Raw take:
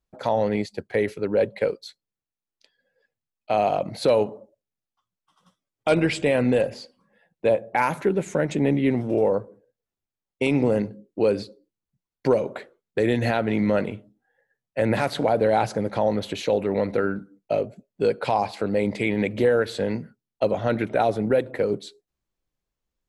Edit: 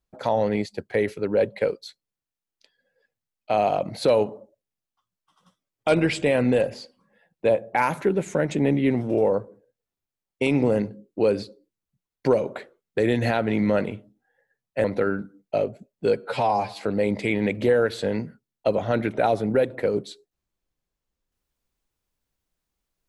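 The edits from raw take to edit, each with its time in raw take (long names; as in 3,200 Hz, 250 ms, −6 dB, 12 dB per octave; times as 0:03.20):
0:14.84–0:16.81: remove
0:18.14–0:18.56: time-stretch 1.5×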